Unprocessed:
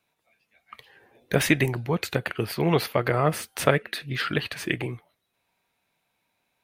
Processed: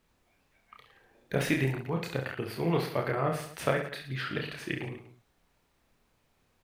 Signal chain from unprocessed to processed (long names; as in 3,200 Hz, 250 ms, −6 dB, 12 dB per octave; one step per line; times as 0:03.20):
background noise pink −64 dBFS
high-shelf EQ 3,700 Hz −6 dB
on a send: reverse bouncing-ball delay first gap 30 ms, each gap 1.25×, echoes 5
on the sum: level −8 dB